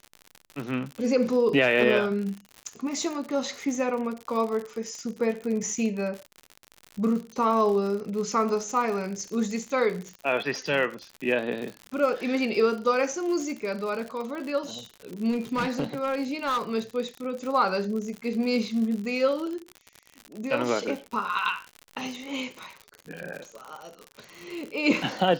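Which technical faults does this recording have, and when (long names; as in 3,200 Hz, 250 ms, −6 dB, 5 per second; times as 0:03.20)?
surface crackle 84 per second −32 dBFS
0:15.31–0:16.61: clipping −22.5 dBFS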